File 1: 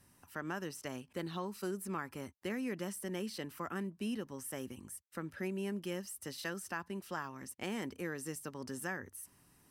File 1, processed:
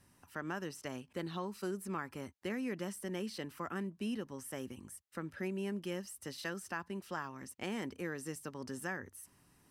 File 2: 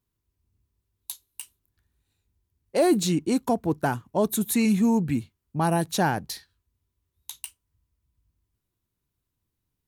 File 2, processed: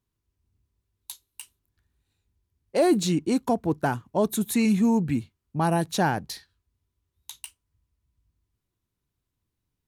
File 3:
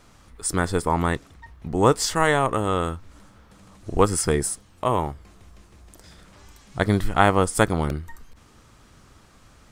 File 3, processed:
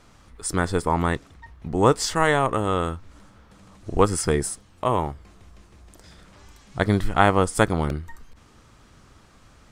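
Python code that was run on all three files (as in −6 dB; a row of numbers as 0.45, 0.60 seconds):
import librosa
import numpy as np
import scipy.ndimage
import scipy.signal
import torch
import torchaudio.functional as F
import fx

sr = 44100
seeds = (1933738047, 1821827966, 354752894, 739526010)

y = fx.high_shelf(x, sr, hz=11000.0, db=-8.0)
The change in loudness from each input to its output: 0.0, 0.0, 0.0 LU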